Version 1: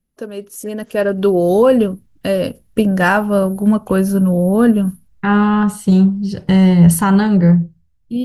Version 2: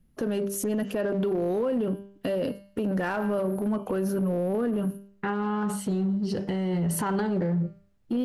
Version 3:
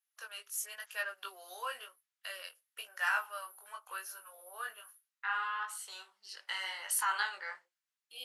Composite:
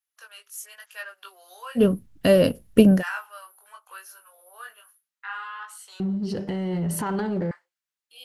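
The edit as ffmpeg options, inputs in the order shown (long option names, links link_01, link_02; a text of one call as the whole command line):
ffmpeg -i take0.wav -i take1.wav -i take2.wav -filter_complex "[2:a]asplit=3[link_01][link_02][link_03];[link_01]atrim=end=1.85[link_04];[0:a]atrim=start=1.75:end=3.03[link_05];[link_02]atrim=start=2.93:end=6.002[link_06];[1:a]atrim=start=5.998:end=7.512[link_07];[link_03]atrim=start=7.508[link_08];[link_04][link_05]acrossfade=duration=0.1:curve1=tri:curve2=tri[link_09];[link_09][link_06]acrossfade=duration=0.1:curve1=tri:curve2=tri[link_10];[link_10][link_07]acrossfade=duration=0.004:curve1=hsin:curve2=hsin[link_11];[link_11][link_08]acrossfade=duration=0.004:curve1=hsin:curve2=hsin" out.wav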